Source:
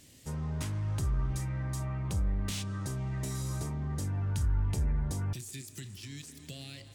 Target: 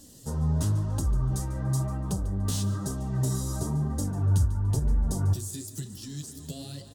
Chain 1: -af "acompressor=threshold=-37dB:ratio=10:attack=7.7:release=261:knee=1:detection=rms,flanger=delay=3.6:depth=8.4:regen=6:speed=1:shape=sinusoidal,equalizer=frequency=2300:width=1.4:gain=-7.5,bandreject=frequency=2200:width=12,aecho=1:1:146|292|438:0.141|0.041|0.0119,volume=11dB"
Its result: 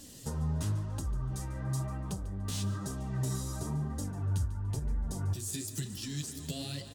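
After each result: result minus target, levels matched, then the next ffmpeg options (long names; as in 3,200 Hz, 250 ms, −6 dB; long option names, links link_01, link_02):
downward compressor: peak gain reduction +8.5 dB; 2,000 Hz band +7.0 dB
-af "acompressor=threshold=-27.5dB:ratio=10:attack=7.7:release=261:knee=1:detection=rms,flanger=delay=3.6:depth=8.4:regen=6:speed=1:shape=sinusoidal,equalizer=frequency=2300:width=1.4:gain=-7.5,bandreject=frequency=2200:width=12,aecho=1:1:146|292|438:0.141|0.041|0.0119,volume=11dB"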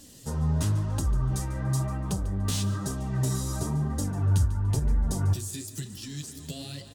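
2,000 Hz band +5.5 dB
-af "acompressor=threshold=-27.5dB:ratio=10:attack=7.7:release=261:knee=1:detection=rms,flanger=delay=3.6:depth=8.4:regen=6:speed=1:shape=sinusoidal,equalizer=frequency=2300:width=1.4:gain=-17.5,bandreject=frequency=2200:width=12,aecho=1:1:146|292|438:0.141|0.041|0.0119,volume=11dB"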